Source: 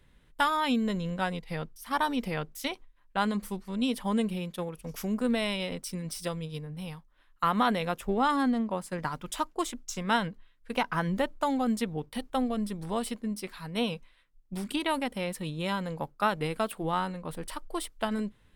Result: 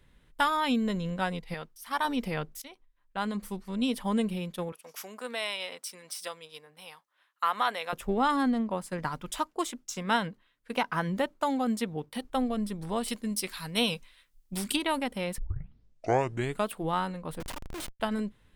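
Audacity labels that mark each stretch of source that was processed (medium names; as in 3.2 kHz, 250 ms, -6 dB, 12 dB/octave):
1.540000	2.050000	bass shelf 410 Hz -11 dB
2.620000	3.690000	fade in, from -18 dB
4.720000	7.930000	high-pass 690 Hz
9.380000	12.250000	high-pass 120 Hz 6 dB/octave
13.080000	14.770000	treble shelf 2.6 kHz +12 dB
15.380000	15.380000	tape start 1.30 s
17.400000	18.000000	Schmitt trigger flips at -43 dBFS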